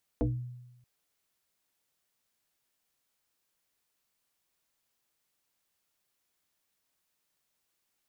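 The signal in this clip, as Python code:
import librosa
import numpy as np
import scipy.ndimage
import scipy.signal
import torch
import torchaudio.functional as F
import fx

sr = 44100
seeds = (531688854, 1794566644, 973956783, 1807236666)

y = fx.fm2(sr, length_s=0.63, level_db=-23.0, carrier_hz=123.0, ratio=1.47, index=2.8, index_s=0.33, decay_s=1.01, shape='exponential')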